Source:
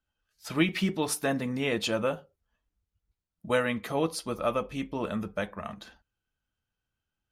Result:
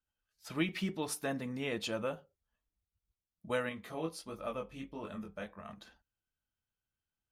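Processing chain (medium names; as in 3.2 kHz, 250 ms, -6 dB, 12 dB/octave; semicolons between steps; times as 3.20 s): 3.69–5.69 s: chorus 1.5 Hz, delay 19 ms, depth 5.8 ms; trim -8 dB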